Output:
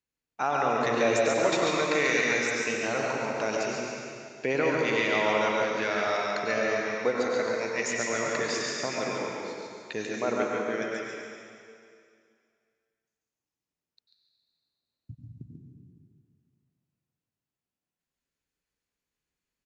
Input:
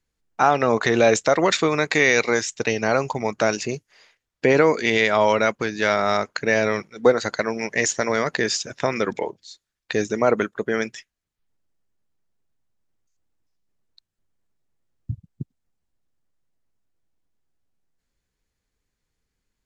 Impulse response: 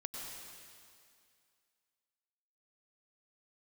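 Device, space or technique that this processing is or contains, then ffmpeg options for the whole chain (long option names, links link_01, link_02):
PA in a hall: -filter_complex "[0:a]highpass=frequency=140:poles=1,equalizer=frequency=2600:width_type=o:width=0.22:gain=5.5,aecho=1:1:141:0.562[link_01];[1:a]atrim=start_sample=2205[link_02];[link_01][link_02]afir=irnorm=-1:irlink=0,volume=-7dB"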